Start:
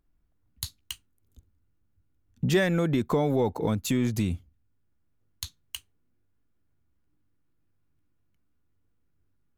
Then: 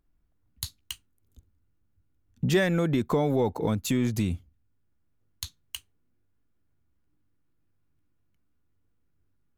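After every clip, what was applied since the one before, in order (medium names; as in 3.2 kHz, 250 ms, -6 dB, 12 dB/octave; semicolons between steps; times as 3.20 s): no audible change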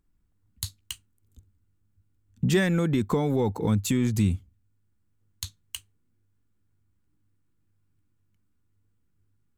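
graphic EQ with 31 bands 100 Hz +8 dB, 200 Hz +5 dB, 630 Hz -8 dB, 8 kHz +6 dB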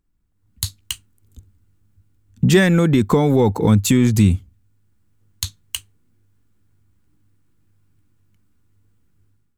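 level rider gain up to 10.5 dB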